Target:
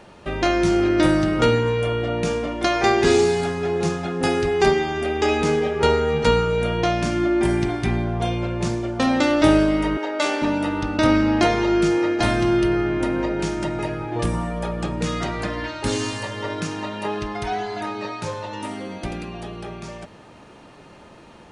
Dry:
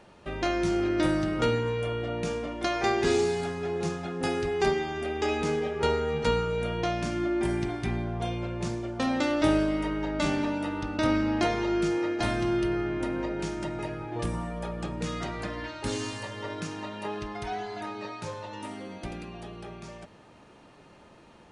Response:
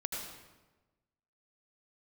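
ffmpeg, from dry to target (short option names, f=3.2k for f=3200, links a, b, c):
-filter_complex "[0:a]asettb=1/sr,asplit=3[a][b][c];[a]atrim=end=9.974[d];[b]atrim=start=9.97:end=10.42,asetpts=PTS-STARTPTS,afade=t=in:d=0.004:c=qsin,afade=t=out:st=0.446:d=0.004:c=qsin,highpass=f=360:w=0.5412,highpass=f=360:w=1.3066[e];[c]atrim=start=10.416[f];[d][e]acrossfade=d=0.004:c1=hsin:c2=qsin[g];[g][f]acrossfade=d=0.004:c1=qsin:c2=hsin,volume=8dB"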